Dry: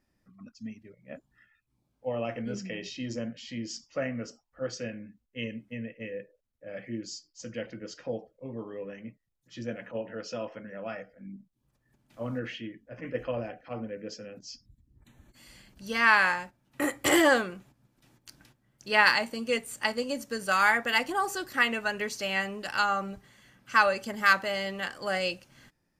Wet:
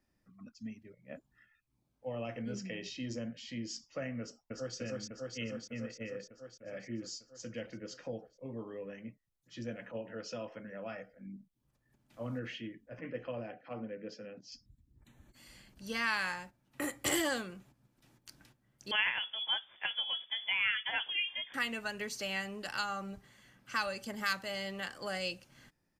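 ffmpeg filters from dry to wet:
-filter_complex "[0:a]asplit=2[s0][s1];[s1]afade=t=in:st=4.2:d=0.01,afade=t=out:st=4.77:d=0.01,aecho=0:1:300|600|900|1200|1500|1800|2100|2400|2700|3000|3300|3600:0.891251|0.668438|0.501329|0.375996|0.281997|0.211498|0.158624|0.118968|0.0892257|0.0669193|0.0501895|0.0376421[s2];[s0][s2]amix=inputs=2:normalize=0,asettb=1/sr,asplit=3[s3][s4][s5];[s3]atrim=end=12.994[s6];[s4]atrim=start=12.99:end=14.52,asetpts=PTS-STARTPTS,afade=t=in:d=0.004:c=qsin,afade=t=out:st=1.526:d=0.004:c=qsin,highpass=130,lowpass=4000[s7];[s5]atrim=start=14.516[s8];[s6][s7]acrossfade=d=0.004:c1=hsin:c2=qsin[s9];[s9][s8]acrossfade=d=0.004:c1=qsin:c2=hsin,asettb=1/sr,asplit=3[s10][s11][s12];[s10]atrim=end=18.914[s13];[s11]atrim=start=18.91:end=21.54,asetpts=PTS-STARTPTS,afade=t=in:d=0.004:c=qsin,afade=t=out:st=2.626:d=0.004:c=qsin,lowpass=f=3100:t=q:w=0.5098,lowpass=f=3100:t=q:w=0.6013,lowpass=f=3100:t=q:w=0.9,lowpass=f=3100:t=q:w=2.563,afreqshift=-3600[s14];[s12]atrim=start=21.536[s15];[s13][s14]acrossfade=d=0.004:c1=hsin:c2=qsin[s16];[s16][s15]acrossfade=d=0.004:c1=qsin:c2=hsin,acrossover=split=200|3000[s17][s18][s19];[s18]acompressor=threshold=0.0141:ratio=2[s20];[s17][s20][s19]amix=inputs=3:normalize=0,volume=0.668"

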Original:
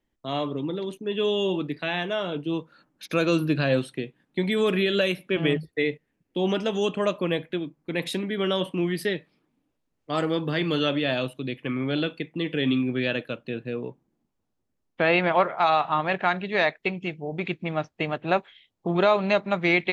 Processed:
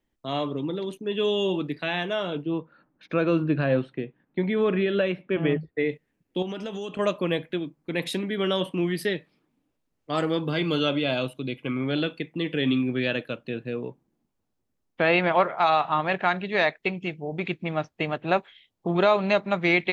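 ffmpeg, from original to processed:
-filter_complex "[0:a]asplit=3[s0][s1][s2];[s0]afade=t=out:st=2.42:d=0.02[s3];[s1]lowpass=2000,afade=t=in:st=2.42:d=0.02,afade=t=out:st=5.88:d=0.02[s4];[s2]afade=t=in:st=5.88:d=0.02[s5];[s3][s4][s5]amix=inputs=3:normalize=0,asettb=1/sr,asplit=3[s6][s7][s8];[s6]atrim=end=6.424[s9];[s7]atrim=start=6.42:end=6.99,asetpts=PTS-STARTPTS,afade=t=in:d=0.004:c=qsin,afade=t=out:st=0.566:d=0.004:c=qsin,acompressor=threshold=0.0316:ratio=5:attack=3.2:release=140:knee=1:detection=peak[s10];[s8]atrim=start=6.986[s11];[s9][s10]acrossfade=d=0.004:c1=hsin:c2=qsin[s12];[s12][s11]acrossfade=d=0.004:c1=qsin:c2=hsin,asettb=1/sr,asplit=3[s13][s14][s15];[s13]atrim=end=10.434[s16];[s14]atrim=start=10.43:end=11.84,asetpts=PTS-STARTPTS,afade=t=in:d=0.004:c=qsin,afade=t=out:st=1.406:d=0.004:c=qsin,asuperstop=centerf=1800:order=12:qfactor=7.7[s17];[s15]atrim=start=11.836[s18];[s16][s17]acrossfade=d=0.004:c1=hsin:c2=qsin[s19];[s19][s18]acrossfade=d=0.004:c1=qsin:c2=hsin"

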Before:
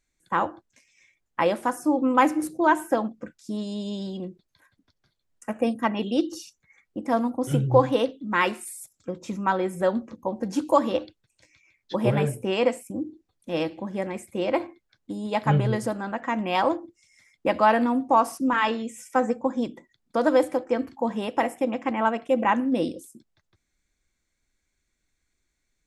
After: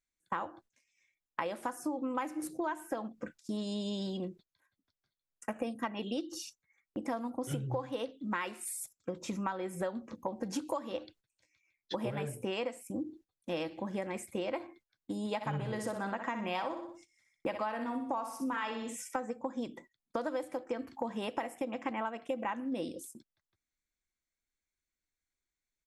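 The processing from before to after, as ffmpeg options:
-filter_complex "[0:a]asplit=3[s0][s1][s2];[s0]afade=t=out:st=15.4:d=0.02[s3];[s1]aecho=1:1:61|122|183|244:0.376|0.15|0.0601|0.0241,afade=t=in:st=15.4:d=0.02,afade=t=out:st=18.95:d=0.02[s4];[s2]afade=t=in:st=18.95:d=0.02[s5];[s3][s4][s5]amix=inputs=3:normalize=0,agate=range=0.2:threshold=0.00316:ratio=16:detection=peak,lowshelf=f=480:g=-4.5,acompressor=threshold=0.0251:ratio=12"

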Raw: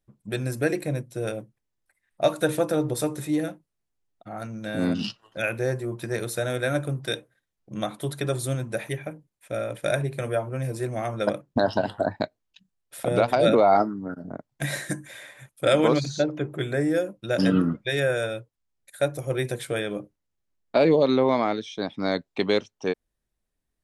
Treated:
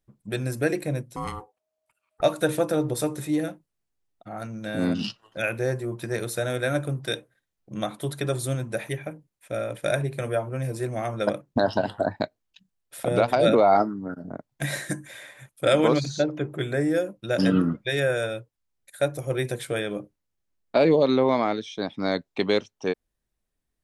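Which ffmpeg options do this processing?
-filter_complex "[0:a]asettb=1/sr,asplit=3[s0][s1][s2];[s0]atrim=end=1.164[s3];[s1]atrim=start=1.16:end=2.22,asetpts=PTS-STARTPTS,afade=t=in:d=0.004:c=qsin,afade=t=out:st=1.056:d=0.004:c=qsin,aeval=exprs='val(0)*sin(2*PI*630*n/s)':c=same[s4];[s2]atrim=start=2.216[s5];[s3][s4]acrossfade=d=0.004:c1=hsin:c2=qsin[s6];[s6][s5]acrossfade=d=0.004:c1=qsin:c2=hsin"

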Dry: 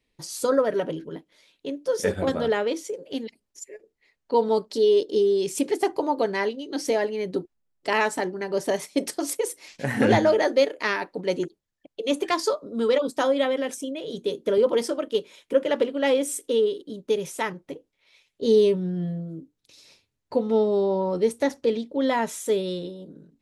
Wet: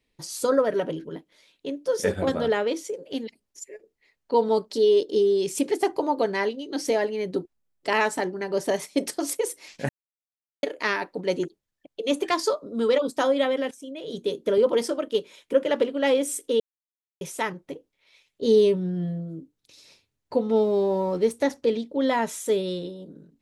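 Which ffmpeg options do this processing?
-filter_complex "[0:a]asettb=1/sr,asplit=3[s0][s1][s2];[s0]atrim=end=20.564[s3];[s1]atrim=start=20.56:end=21.33,asetpts=PTS-STARTPTS,afade=t=in:d=0.004:c=qsin,afade=t=out:st=0.766:d=0.004:c=qsin,aeval=exprs='sgn(val(0))*max(abs(val(0))-0.00266,0)':c=same[s4];[s2]atrim=start=21.326[s5];[s3][s4]acrossfade=d=0.004:c1=hsin:c2=qsin[s6];[s6][s5]acrossfade=d=0.004:c1=qsin:c2=hsin,asplit=6[s7][s8][s9][s10][s11][s12];[s7]atrim=end=9.89,asetpts=PTS-STARTPTS,afade=t=out:st=9.886:d=0.004:c=hsin[s13];[s8]atrim=start=9.89:end=10.63,asetpts=PTS-STARTPTS,volume=0[s14];[s9]atrim=start=10.63:end=13.71,asetpts=PTS-STARTPTS,afade=t=in:d=0.004:c=hsin,afade=t=out:st=3.076:d=0.004:c=hsin:silence=0.149624[s15];[s10]atrim=start=13.71:end=16.6,asetpts=PTS-STARTPTS,afade=t=in:d=0.44:silence=0.149624,afade=t=out:st=2.886:d=0.004:c=hsin[s16];[s11]atrim=start=16.6:end=17.21,asetpts=PTS-STARTPTS,volume=0[s17];[s12]atrim=start=17.21,asetpts=PTS-STARTPTS,afade=t=in:d=0.004:c=hsin[s18];[s13][s14][s15][s16][s17][s18]concat=n=6:v=0:a=1"

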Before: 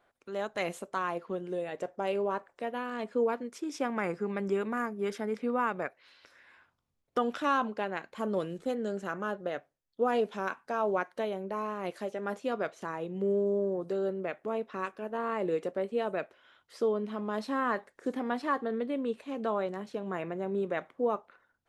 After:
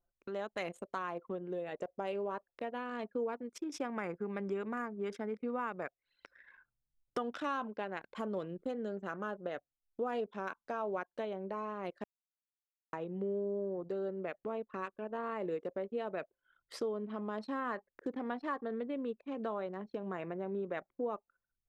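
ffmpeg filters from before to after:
-filter_complex "[0:a]asplit=3[s0][s1][s2];[s0]atrim=end=12.04,asetpts=PTS-STARTPTS,afade=t=out:st=12.036:d=0.004:c=hsin[s3];[s1]atrim=start=12.04:end=12.93,asetpts=PTS-STARTPTS,volume=0[s4];[s2]atrim=start=12.93,asetpts=PTS-STARTPTS,afade=t=in:d=0.004:c=hsin[s5];[s3][s4][s5]concat=n=3:v=0:a=1,acompressor=threshold=0.00251:ratio=2,anlmdn=0.000631,volume=2.11"

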